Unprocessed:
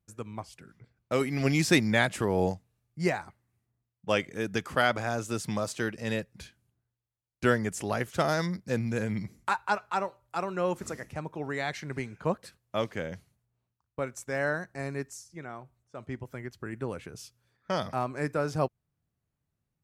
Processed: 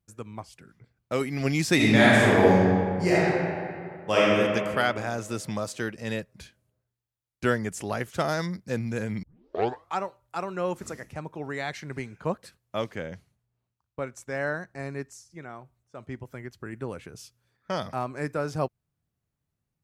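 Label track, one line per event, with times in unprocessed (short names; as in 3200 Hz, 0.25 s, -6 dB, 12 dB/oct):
1.750000	4.340000	reverb throw, RT60 2.3 s, DRR -8 dB
9.230000	9.230000	tape start 0.76 s
12.950000	15.310000	high shelf 7900 Hz -7 dB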